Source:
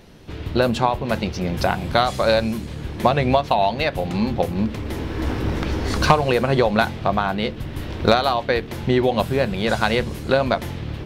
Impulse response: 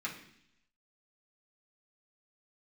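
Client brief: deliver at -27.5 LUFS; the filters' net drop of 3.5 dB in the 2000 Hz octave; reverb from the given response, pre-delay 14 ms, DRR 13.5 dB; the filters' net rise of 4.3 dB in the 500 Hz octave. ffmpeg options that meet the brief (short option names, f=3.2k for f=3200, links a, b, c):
-filter_complex "[0:a]equalizer=f=500:t=o:g=5.5,equalizer=f=2k:t=o:g=-5.5,asplit=2[a][b];[1:a]atrim=start_sample=2205,adelay=14[c];[b][c]afir=irnorm=-1:irlink=0,volume=-16.5dB[d];[a][d]amix=inputs=2:normalize=0,volume=-8.5dB"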